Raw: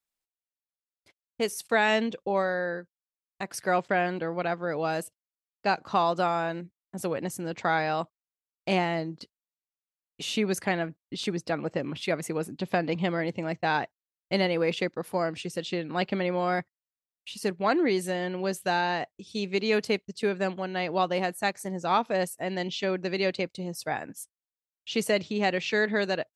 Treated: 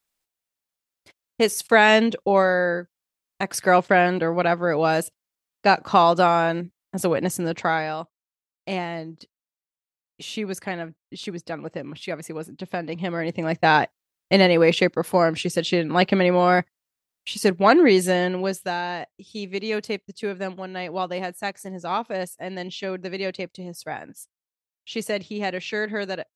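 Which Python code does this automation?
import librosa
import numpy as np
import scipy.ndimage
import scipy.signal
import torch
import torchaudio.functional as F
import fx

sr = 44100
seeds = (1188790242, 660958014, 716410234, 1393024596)

y = fx.gain(x, sr, db=fx.line((7.45, 8.5), (8.0, -2.0), (12.93, -2.0), (13.66, 9.5), (18.19, 9.5), (18.76, -1.0)))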